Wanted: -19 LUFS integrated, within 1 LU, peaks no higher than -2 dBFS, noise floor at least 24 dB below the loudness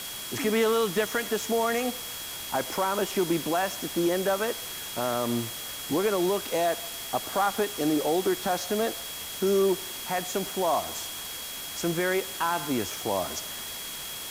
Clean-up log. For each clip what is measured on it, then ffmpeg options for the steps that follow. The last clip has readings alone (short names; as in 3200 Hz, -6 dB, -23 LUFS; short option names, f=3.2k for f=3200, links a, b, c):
steady tone 3300 Hz; tone level -41 dBFS; noise floor -37 dBFS; noise floor target -52 dBFS; loudness -28.0 LUFS; peak -14.5 dBFS; loudness target -19.0 LUFS
-> -af "bandreject=f=3.3k:w=30"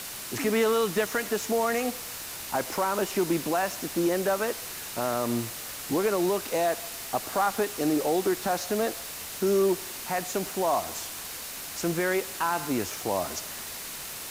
steady tone none; noise floor -38 dBFS; noise floor target -52 dBFS
-> -af "afftdn=nr=14:nf=-38"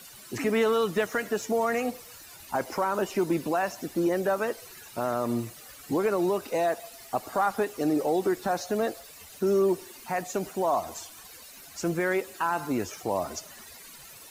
noise floor -48 dBFS; noise floor target -53 dBFS
-> -af "afftdn=nr=6:nf=-48"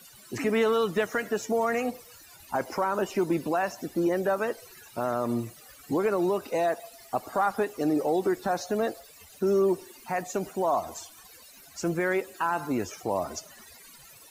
noise floor -52 dBFS; noise floor target -53 dBFS
-> -af "afftdn=nr=6:nf=-52"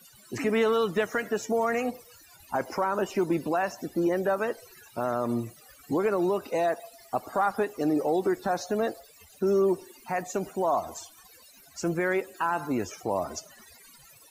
noise floor -55 dBFS; loudness -28.5 LUFS; peak -15.5 dBFS; loudness target -19.0 LUFS
-> -af "volume=9.5dB"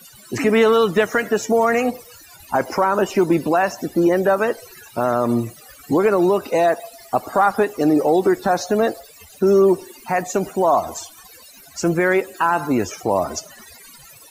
loudness -19.0 LUFS; peak -6.0 dBFS; noise floor -45 dBFS